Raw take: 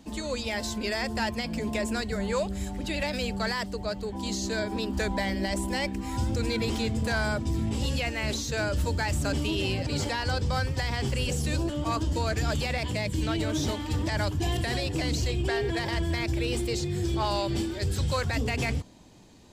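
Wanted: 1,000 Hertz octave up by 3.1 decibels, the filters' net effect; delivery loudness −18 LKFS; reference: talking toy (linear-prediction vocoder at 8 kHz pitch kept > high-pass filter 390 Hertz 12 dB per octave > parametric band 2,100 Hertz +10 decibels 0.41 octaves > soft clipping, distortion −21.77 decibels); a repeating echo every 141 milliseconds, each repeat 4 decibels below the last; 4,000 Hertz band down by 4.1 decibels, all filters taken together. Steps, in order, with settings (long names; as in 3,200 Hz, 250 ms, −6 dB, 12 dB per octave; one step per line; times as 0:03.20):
parametric band 1,000 Hz +4 dB
parametric band 4,000 Hz −6.5 dB
repeating echo 141 ms, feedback 63%, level −4 dB
linear-prediction vocoder at 8 kHz pitch kept
high-pass filter 390 Hz 12 dB per octave
parametric band 2,100 Hz +10 dB 0.41 octaves
soft clipping −16.5 dBFS
level +11.5 dB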